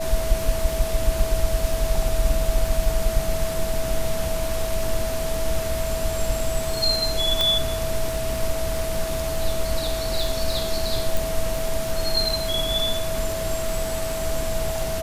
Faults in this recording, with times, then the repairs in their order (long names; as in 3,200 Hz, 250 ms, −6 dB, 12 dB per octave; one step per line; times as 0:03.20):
surface crackle 22 per second −25 dBFS
whistle 650 Hz −27 dBFS
0:07.41: click −6 dBFS
0:11.17: click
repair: click removal
notch filter 650 Hz, Q 30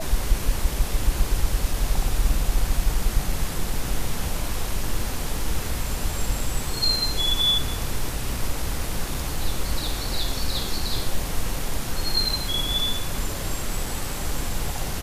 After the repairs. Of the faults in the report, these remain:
0:11.17: click